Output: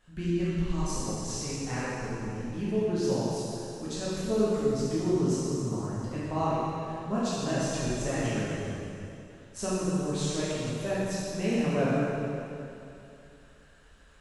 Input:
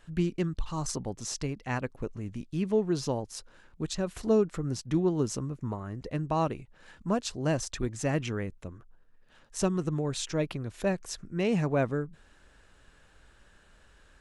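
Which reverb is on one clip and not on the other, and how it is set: plate-style reverb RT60 2.7 s, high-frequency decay 0.95×, DRR -9.5 dB; trim -8.5 dB

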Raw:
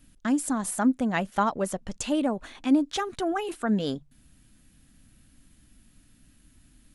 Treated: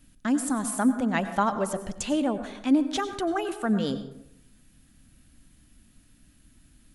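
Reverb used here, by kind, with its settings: plate-style reverb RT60 0.78 s, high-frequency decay 0.5×, pre-delay 80 ms, DRR 10.5 dB

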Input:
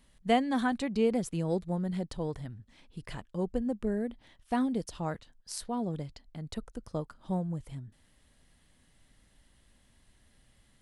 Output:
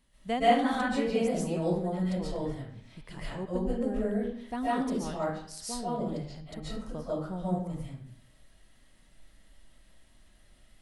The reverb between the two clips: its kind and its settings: algorithmic reverb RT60 0.62 s, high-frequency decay 0.7×, pre-delay 100 ms, DRR -9 dB; trim -6 dB

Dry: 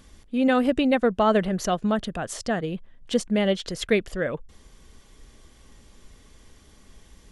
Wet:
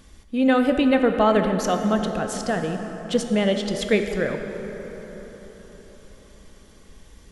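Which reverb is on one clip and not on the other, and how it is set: plate-style reverb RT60 4.8 s, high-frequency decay 0.45×, DRR 5 dB; trim +1 dB

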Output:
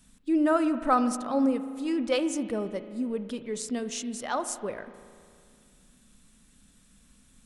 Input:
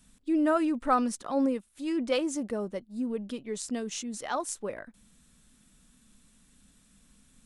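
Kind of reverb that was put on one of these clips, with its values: spring tank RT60 2.2 s, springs 37 ms, chirp 50 ms, DRR 11 dB; trim +1.5 dB

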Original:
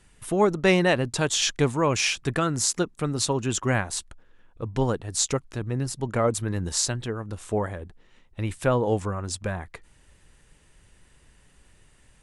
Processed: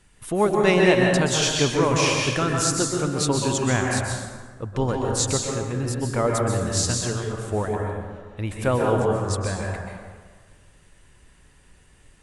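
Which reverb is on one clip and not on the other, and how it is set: plate-style reverb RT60 1.6 s, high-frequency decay 0.55×, pre-delay 115 ms, DRR -0.5 dB

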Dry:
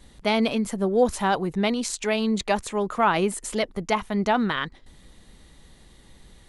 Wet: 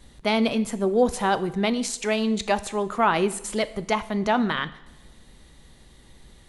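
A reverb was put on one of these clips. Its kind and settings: two-slope reverb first 0.75 s, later 2 s, DRR 13 dB

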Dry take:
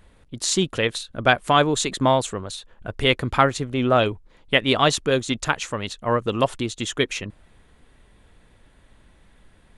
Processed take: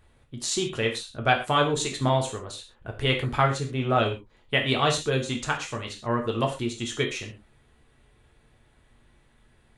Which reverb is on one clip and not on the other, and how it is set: gated-style reverb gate 150 ms falling, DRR 1 dB; trim -7 dB

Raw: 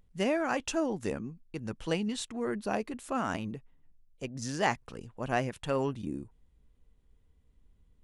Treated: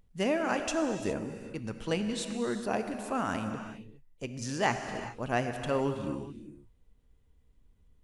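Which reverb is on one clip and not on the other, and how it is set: gated-style reverb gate 440 ms flat, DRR 6.5 dB

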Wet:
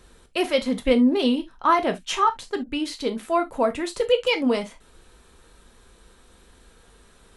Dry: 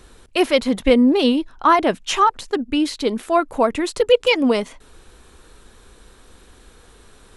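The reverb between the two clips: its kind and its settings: gated-style reverb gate 90 ms falling, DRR 5.5 dB; trim -6 dB

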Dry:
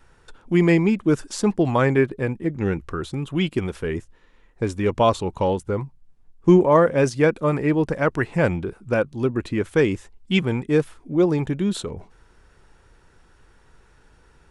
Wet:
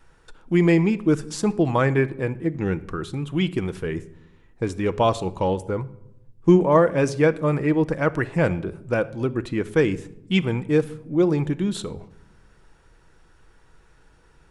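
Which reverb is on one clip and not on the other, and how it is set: simulated room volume 2400 m³, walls furnished, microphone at 0.62 m; trim -1.5 dB

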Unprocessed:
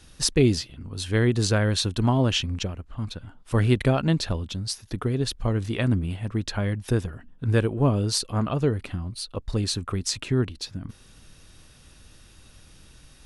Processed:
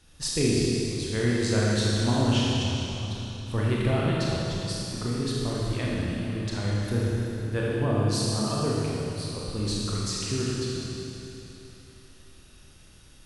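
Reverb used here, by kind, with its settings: Schroeder reverb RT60 3.2 s, combs from 26 ms, DRR -5.5 dB; trim -8 dB

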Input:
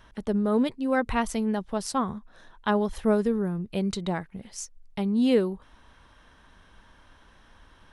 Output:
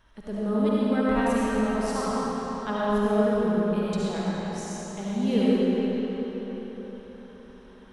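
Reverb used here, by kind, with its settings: algorithmic reverb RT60 4.7 s, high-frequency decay 0.75×, pre-delay 30 ms, DRR -8.5 dB; trim -8 dB

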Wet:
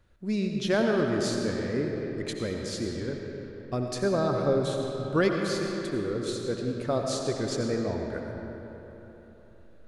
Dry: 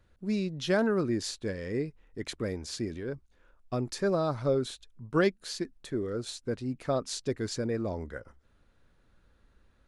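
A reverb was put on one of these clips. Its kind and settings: algorithmic reverb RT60 3.7 s, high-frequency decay 0.6×, pre-delay 45 ms, DRR 1.5 dB; trim +1 dB

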